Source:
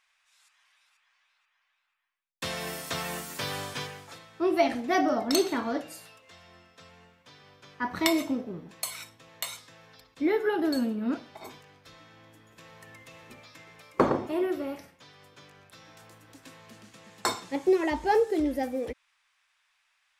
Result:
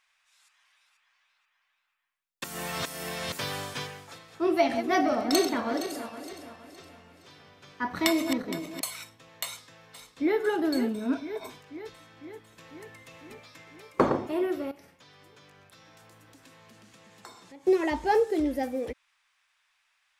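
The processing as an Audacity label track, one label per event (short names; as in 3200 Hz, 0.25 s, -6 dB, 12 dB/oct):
2.440000	3.320000	reverse
4.000000	8.810000	regenerating reverse delay 0.233 s, feedback 60%, level -9 dB
9.440000	10.390000	echo throw 0.5 s, feedback 70%, level -9.5 dB
10.940000	11.500000	ripple EQ crests per octave 1.6, crest to trough 9 dB
14.710000	17.670000	compressor 3:1, threshold -51 dBFS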